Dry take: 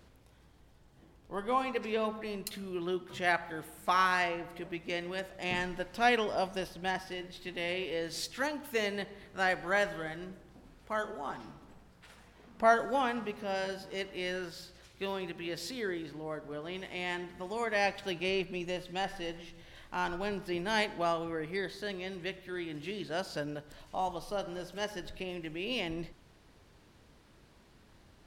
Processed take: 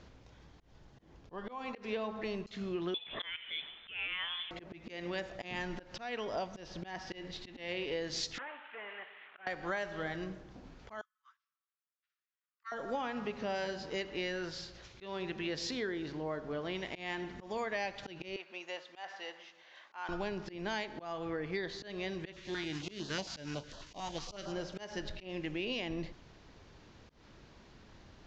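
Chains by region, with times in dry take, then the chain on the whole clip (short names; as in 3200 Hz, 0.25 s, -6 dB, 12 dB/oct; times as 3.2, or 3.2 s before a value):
2.94–4.51 block floating point 7-bit + HPF 240 Hz 24 dB/oct + inverted band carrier 3800 Hz
8.38–9.47 delta modulation 16 kbps, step -47 dBFS + HPF 1200 Hz + air absorption 98 m
11.01–12.72 steep high-pass 1100 Hz 72 dB/oct + doubler 14 ms -12 dB + upward expander 2.5:1, over -52 dBFS
18.36–20.09 HPF 880 Hz + high shelf 2300 Hz -9.5 dB
22.32–24.51 spectral whitening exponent 0.6 + stepped notch 11 Hz 460–2200 Hz
whole clip: steep low-pass 7000 Hz 72 dB/oct; compressor 20:1, threshold -36 dBFS; auto swell 0.154 s; gain +3.5 dB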